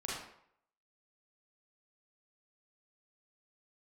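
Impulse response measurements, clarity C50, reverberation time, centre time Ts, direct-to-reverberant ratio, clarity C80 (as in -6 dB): -0.5 dB, 0.65 s, 65 ms, -6.0 dB, 4.0 dB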